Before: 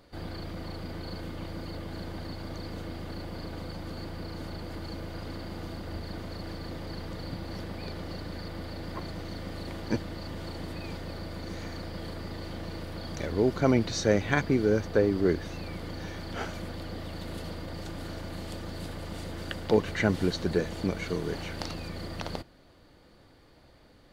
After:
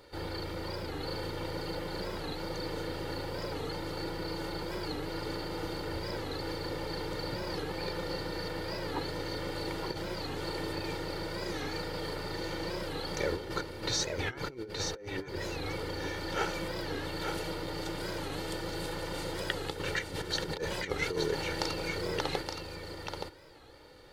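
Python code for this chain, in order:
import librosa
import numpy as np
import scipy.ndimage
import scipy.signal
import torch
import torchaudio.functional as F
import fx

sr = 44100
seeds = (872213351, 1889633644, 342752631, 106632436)

y = fx.over_compress(x, sr, threshold_db=-32.0, ratio=-0.5)
y = fx.low_shelf(y, sr, hz=130.0, db=-10.0)
y = y + 0.63 * np.pad(y, (int(2.2 * sr / 1000.0), 0))[:len(y)]
y = y + 10.0 ** (-5.5 / 20.0) * np.pad(y, (int(871 * sr / 1000.0), 0))[:len(y)]
y = fx.record_warp(y, sr, rpm=45.0, depth_cents=160.0)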